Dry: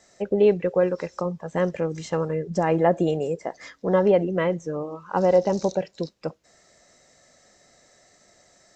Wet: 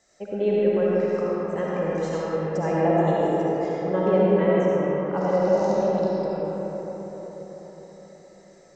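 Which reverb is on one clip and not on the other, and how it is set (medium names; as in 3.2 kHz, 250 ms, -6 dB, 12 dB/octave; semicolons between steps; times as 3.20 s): algorithmic reverb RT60 5 s, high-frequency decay 0.4×, pre-delay 30 ms, DRR -7 dB; trim -7.5 dB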